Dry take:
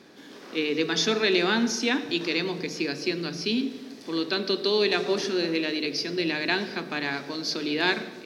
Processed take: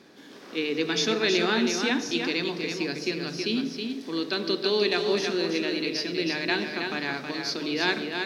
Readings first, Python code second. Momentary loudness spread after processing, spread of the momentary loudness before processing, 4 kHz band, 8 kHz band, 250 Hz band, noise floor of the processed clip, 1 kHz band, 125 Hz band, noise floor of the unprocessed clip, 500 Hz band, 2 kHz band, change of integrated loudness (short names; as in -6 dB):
7 LU, 8 LU, -0.5 dB, -0.5 dB, -0.5 dB, -46 dBFS, -0.5 dB, -0.5 dB, -45 dBFS, -0.5 dB, -0.5 dB, -0.5 dB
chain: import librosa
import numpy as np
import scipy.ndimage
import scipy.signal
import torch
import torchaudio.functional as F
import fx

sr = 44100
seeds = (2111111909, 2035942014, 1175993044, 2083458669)

y = x + 10.0 ** (-5.5 / 20.0) * np.pad(x, (int(321 * sr / 1000.0), 0))[:len(x)]
y = y * librosa.db_to_amplitude(-1.5)